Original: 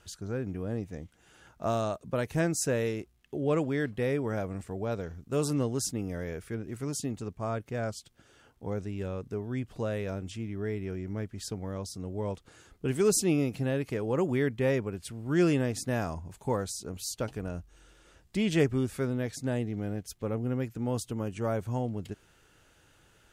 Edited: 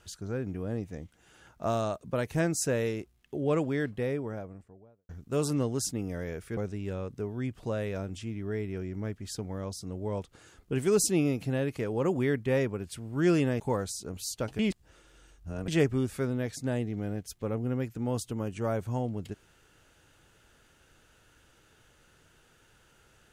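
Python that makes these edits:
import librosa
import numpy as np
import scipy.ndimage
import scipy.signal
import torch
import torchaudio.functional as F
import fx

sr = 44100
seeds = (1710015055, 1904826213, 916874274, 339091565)

y = fx.studio_fade_out(x, sr, start_s=3.68, length_s=1.41)
y = fx.edit(y, sr, fx.cut(start_s=6.57, length_s=2.13),
    fx.cut(start_s=15.73, length_s=0.67),
    fx.reverse_span(start_s=17.39, length_s=1.09), tone=tone)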